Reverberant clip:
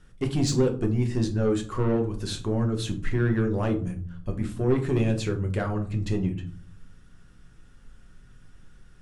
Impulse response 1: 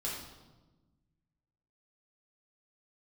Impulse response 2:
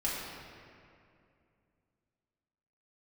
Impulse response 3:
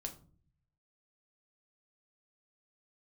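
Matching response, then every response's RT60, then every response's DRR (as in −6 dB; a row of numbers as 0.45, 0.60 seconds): 3; 1.2, 2.5, 0.45 seconds; −5.5, −7.5, 3.5 decibels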